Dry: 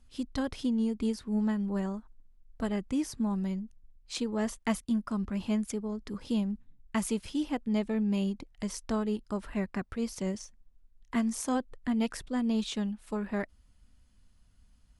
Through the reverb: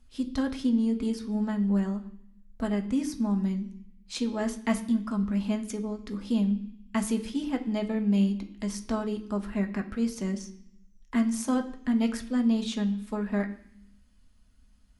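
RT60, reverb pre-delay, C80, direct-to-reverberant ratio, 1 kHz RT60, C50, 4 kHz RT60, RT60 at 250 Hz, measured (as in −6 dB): 0.65 s, 3 ms, 16.0 dB, 4.0 dB, 0.65 s, 13.0 dB, 0.90 s, 0.95 s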